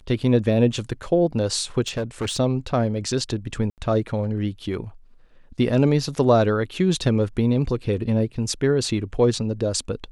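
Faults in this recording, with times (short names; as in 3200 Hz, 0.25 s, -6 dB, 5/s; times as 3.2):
1.81–2.4 clipped -21.5 dBFS
3.7–3.78 gap 78 ms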